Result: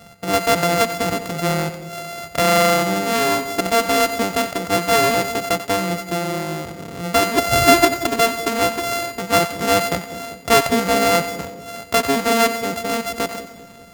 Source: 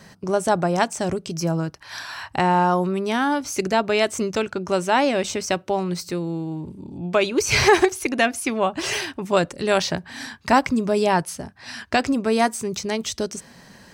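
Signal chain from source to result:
samples sorted by size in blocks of 64 samples
echo with a time of its own for lows and highs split 600 Hz, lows 197 ms, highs 91 ms, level −11.5 dB
level +2.5 dB

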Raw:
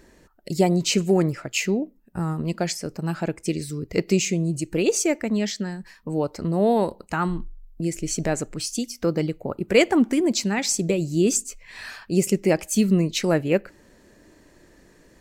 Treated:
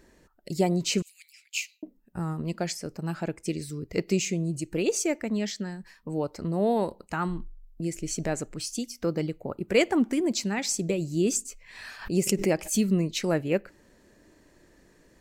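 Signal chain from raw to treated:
0:01.02–0:01.83: Chebyshev high-pass filter 2,300 Hz, order 5
0:11.45–0:12.91: background raised ahead of every attack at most 130 dB per second
level −5 dB

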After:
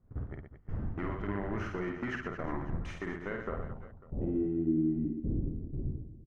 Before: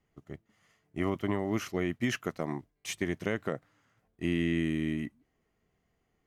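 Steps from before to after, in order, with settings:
wind on the microphone 100 Hz −32 dBFS
noise gate −36 dBFS, range −24 dB
bass and treble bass −1 dB, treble +15 dB
downward compressor 10 to 1, threshold −35 dBFS, peak gain reduction 19 dB
gain into a clipping stage and back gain 34 dB
low-pass filter sweep 1,500 Hz → 330 Hz, 0:03.30–0:04.63
reverse bouncing-ball delay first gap 50 ms, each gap 1.4×, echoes 5
level +3.5 dB

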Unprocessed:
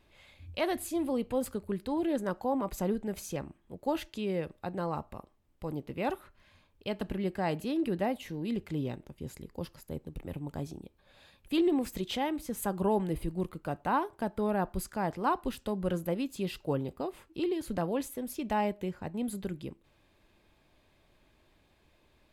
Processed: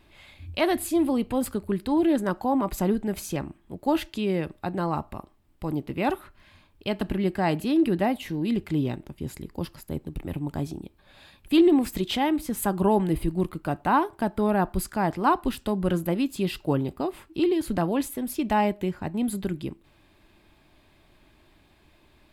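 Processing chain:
thirty-one-band graphic EQ 315 Hz +3 dB, 500 Hz −7 dB, 6,300 Hz −4 dB
level +7.5 dB

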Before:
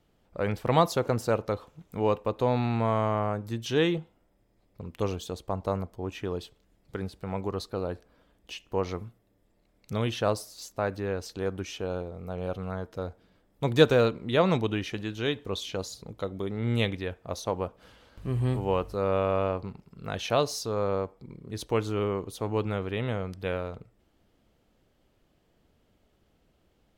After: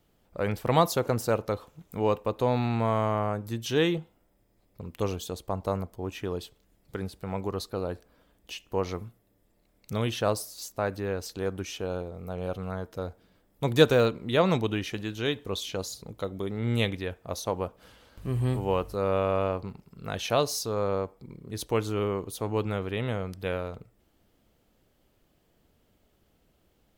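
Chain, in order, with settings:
high-shelf EQ 9,800 Hz +11.5 dB

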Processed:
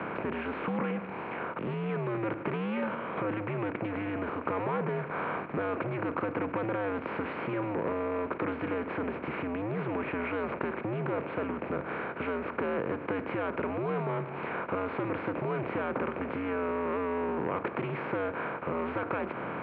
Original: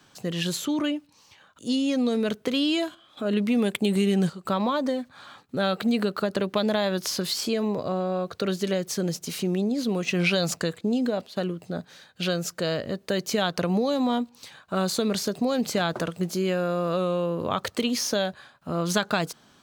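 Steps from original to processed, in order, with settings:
compressor on every frequency bin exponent 0.4
soft clipping −14 dBFS, distortion −15 dB
downward compressor 4 to 1, threshold −24 dBFS, peak gain reduction 6 dB
single-sideband voice off tune −100 Hz 290–2,200 Hz
highs frequency-modulated by the lows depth 0.13 ms
level −2.5 dB

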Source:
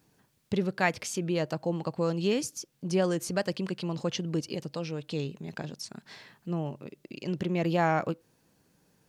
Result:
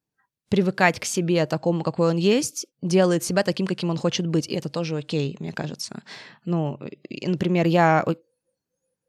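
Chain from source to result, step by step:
noise reduction from a noise print of the clip's start 27 dB
level +8 dB

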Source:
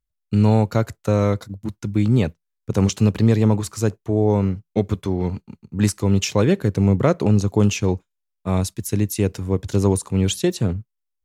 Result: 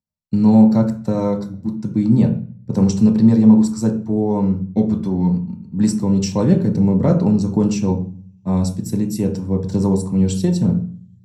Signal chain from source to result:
dynamic equaliser 7,800 Hz, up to +7 dB, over −49 dBFS, Q 4
convolution reverb RT60 0.40 s, pre-delay 3 ms, DRR 1 dB
level −11 dB

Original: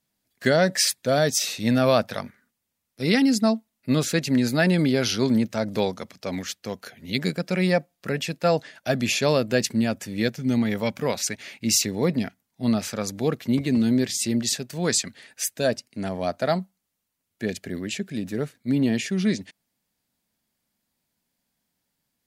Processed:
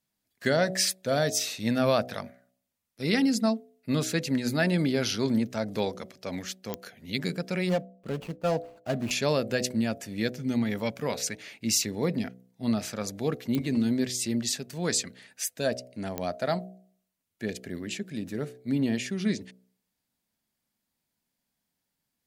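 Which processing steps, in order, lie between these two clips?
0:07.69–0:09.11: running median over 25 samples
hum removal 62.53 Hz, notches 12
digital clicks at 0:06.74/0:13.55/0:16.18, −11 dBFS
level −4.5 dB

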